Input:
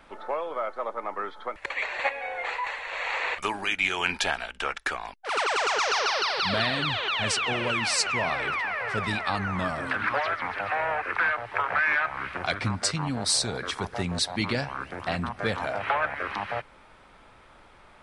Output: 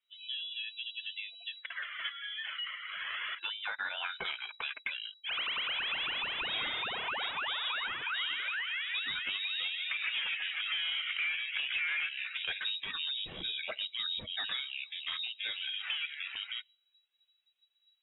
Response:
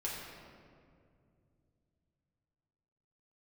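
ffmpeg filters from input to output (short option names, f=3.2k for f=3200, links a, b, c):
-filter_complex "[0:a]asettb=1/sr,asplit=3[a][b][c];[a]atrim=end=9.844[d];[b]atrim=start=9.84:end=12.09,asetpts=PTS-STARTPTS,afade=t=in:d=0.004:c=qsin,afade=t=out:st=2.246:d=0.004:c=qsin,asplit=6[e][f][g][h][i][j];[f]adelay=146,afreqshift=32,volume=-9dB[k];[g]adelay=292,afreqshift=64,volume=-15.6dB[l];[h]adelay=438,afreqshift=96,volume=-22.1dB[m];[i]adelay=584,afreqshift=128,volume=-28.7dB[n];[j]adelay=730,afreqshift=160,volume=-35.2dB[o];[e][k][l][m][n][o]amix=inputs=6:normalize=0,atrim=end_sample=99225[p];[c]atrim=start=12.086[q];[d][p]acrossfade=d=0.004:c1=hsin:c2=qsin[r];[r][q]acrossfade=d=0.004:c1=qsin:c2=hsin,afftdn=nr=27:nf=-38,dynaudnorm=f=920:g=9:m=8.5dB,flanger=delay=1.1:depth=2.4:regen=-29:speed=0.36:shape=sinusoidal,asoftclip=type=tanh:threshold=-16dB,lowpass=f=3.3k:t=q:w=0.5098,lowpass=f=3.3k:t=q:w=0.6013,lowpass=f=3.3k:t=q:w=0.9,lowpass=f=3.3k:t=q:w=2.563,afreqshift=-3900,acompressor=threshold=-33dB:ratio=2,volume=-4dB"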